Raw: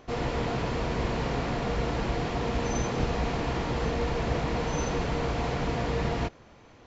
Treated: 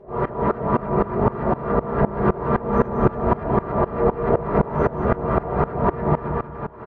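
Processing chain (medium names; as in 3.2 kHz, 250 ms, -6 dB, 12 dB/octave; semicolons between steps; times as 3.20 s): LFO low-pass saw up 3.5 Hz 660–1600 Hz; upward compressor, threshold -29 dBFS; feedback delay 187 ms, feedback 48%, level -3.5 dB; reverberation RT60 0.30 s, pre-delay 3 ms, DRR -9 dB; sawtooth tremolo in dB swelling 3.9 Hz, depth 21 dB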